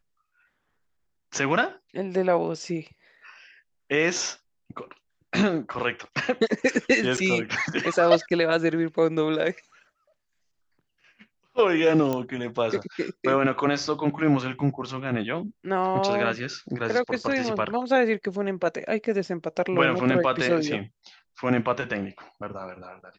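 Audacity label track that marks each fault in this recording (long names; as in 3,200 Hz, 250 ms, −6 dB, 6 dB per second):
7.170000	7.180000	drop-out 6.8 ms
12.130000	12.130000	click −14 dBFS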